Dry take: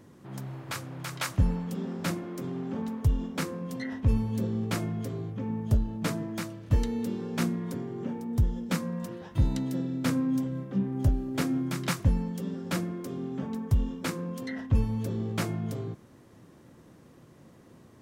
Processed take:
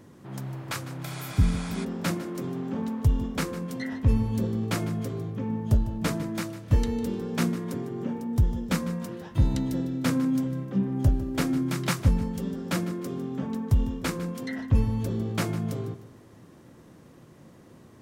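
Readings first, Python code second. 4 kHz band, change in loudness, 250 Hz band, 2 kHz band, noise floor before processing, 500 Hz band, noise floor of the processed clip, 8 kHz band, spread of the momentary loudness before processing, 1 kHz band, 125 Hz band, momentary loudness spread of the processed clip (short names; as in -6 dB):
+2.5 dB, +2.5 dB, +2.5 dB, +2.0 dB, -55 dBFS, +2.5 dB, -52 dBFS, +2.5 dB, 8 LU, +2.5 dB, +2.5 dB, 8 LU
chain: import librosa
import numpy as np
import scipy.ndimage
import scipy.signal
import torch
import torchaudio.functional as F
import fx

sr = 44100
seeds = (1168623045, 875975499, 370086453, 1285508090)

y = fx.echo_feedback(x, sr, ms=152, feedback_pct=36, wet_db=-15.0)
y = fx.spec_repair(y, sr, seeds[0], start_s=1.07, length_s=0.75, low_hz=450.0, high_hz=11000.0, source='before')
y = y * 10.0 ** (2.5 / 20.0)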